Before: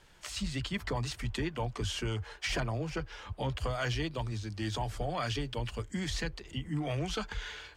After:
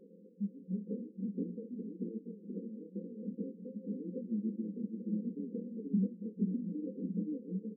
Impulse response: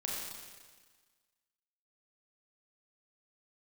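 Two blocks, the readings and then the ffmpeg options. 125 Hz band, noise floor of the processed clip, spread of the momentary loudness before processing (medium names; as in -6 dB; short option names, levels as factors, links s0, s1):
-9.0 dB, -58 dBFS, 5 LU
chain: -filter_complex "[0:a]asplit=2[s0][s1];[s1]aeval=exprs='(mod(79.4*val(0)+1,2)-1)/79.4':c=same,volume=0.251[s2];[s0][s2]amix=inputs=2:normalize=0,tremolo=f=0.89:d=0.92,acompressor=threshold=0.00708:ratio=6,asplit=2[s3][s4];[s4]aecho=0:1:478:0.562[s5];[s3][s5]amix=inputs=2:normalize=0,flanger=delay=17:depth=7.4:speed=2.6,aeval=exprs='0.0133*sin(PI/2*2*val(0)/0.0133)':c=same,asplit=2[s6][s7];[s7]adelay=29,volume=0.251[s8];[s6][s8]amix=inputs=2:normalize=0,asubboost=boost=7:cutoff=230,alimiter=level_in=1.88:limit=0.0631:level=0:latency=1:release=72,volume=0.531,afftfilt=real='re*between(b*sr/4096,180,530)':imag='im*between(b*sr/4096,180,530)':win_size=4096:overlap=0.75,equalizer=f=350:t=o:w=0.98:g=-13,volume=4.73"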